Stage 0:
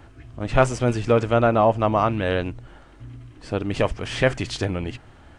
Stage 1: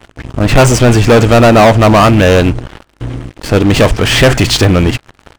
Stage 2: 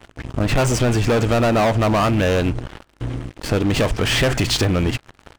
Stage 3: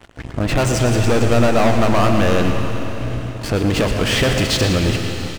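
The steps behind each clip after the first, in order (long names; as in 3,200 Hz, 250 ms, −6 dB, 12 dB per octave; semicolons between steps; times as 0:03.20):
leveller curve on the samples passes 5; level +2.5 dB
downward compressor, threshold −10 dBFS, peak gain reduction 6.5 dB; level −5.5 dB
single-tap delay 115 ms −11 dB; convolution reverb RT60 4.1 s, pre-delay 70 ms, DRR 4.5 dB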